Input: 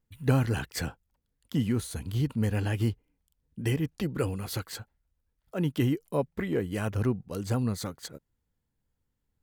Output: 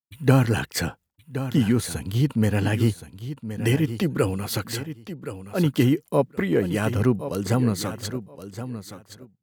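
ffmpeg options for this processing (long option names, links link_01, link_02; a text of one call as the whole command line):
ffmpeg -i in.wav -filter_complex "[0:a]agate=range=-33dB:threshold=-52dB:ratio=3:detection=peak,highpass=100,asplit=2[link_01][link_02];[link_02]aecho=0:1:1071|2142:0.266|0.0426[link_03];[link_01][link_03]amix=inputs=2:normalize=0,volume=7.5dB" out.wav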